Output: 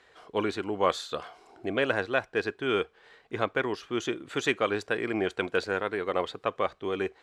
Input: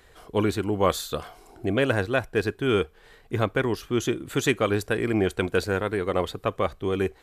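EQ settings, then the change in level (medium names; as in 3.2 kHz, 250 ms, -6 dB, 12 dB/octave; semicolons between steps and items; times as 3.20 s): high-pass 530 Hz 6 dB/octave; distance through air 97 m; 0.0 dB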